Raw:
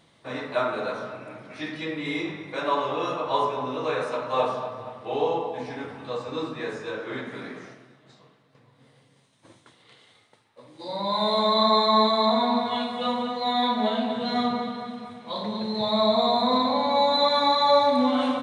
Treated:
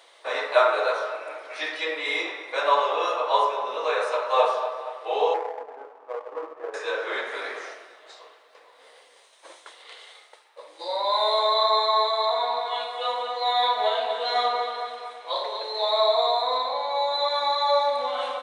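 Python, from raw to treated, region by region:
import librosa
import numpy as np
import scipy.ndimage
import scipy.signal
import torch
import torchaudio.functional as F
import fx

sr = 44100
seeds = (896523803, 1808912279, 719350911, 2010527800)

y = fx.chain(x, sr, fx.lowpass(hz=1100.0, slope=24),
    fx.power_curve(exponent=1.4), at=(5.34, 6.74))
y = scipy.signal.sosfilt(scipy.signal.cheby2(4, 40, 230.0, 'highpass', fs=sr, output='sos'), y)
y = fx.rider(y, sr, range_db=10, speed_s=2.0)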